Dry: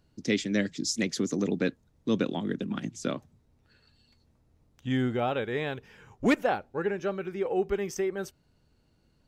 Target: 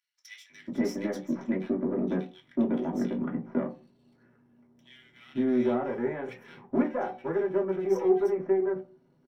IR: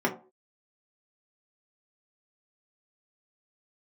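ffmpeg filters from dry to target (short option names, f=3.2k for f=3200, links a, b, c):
-filter_complex "[0:a]aeval=exprs='if(lt(val(0),0),0.251*val(0),val(0))':c=same,acompressor=threshold=-37dB:ratio=2,acrossover=split=2200[a][b];[a]adelay=500[c];[c][b]amix=inputs=2:normalize=0[d];[1:a]atrim=start_sample=2205[e];[d][e]afir=irnorm=-1:irlink=0,volume=-6.5dB"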